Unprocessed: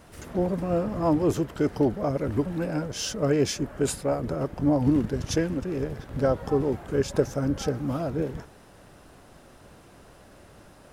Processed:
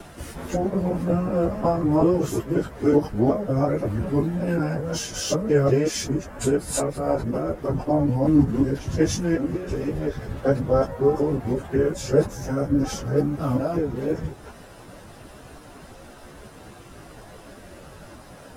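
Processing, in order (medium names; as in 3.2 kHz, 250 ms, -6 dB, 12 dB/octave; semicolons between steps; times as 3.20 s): time reversed locally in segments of 108 ms; in parallel at -1.5 dB: compression 4:1, threshold -37 dBFS, peak gain reduction 17.5 dB; on the sum: dynamic bell 3.5 kHz, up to -5 dB, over -45 dBFS, Q 0.99; plain phase-vocoder stretch 1.7×; trim +5 dB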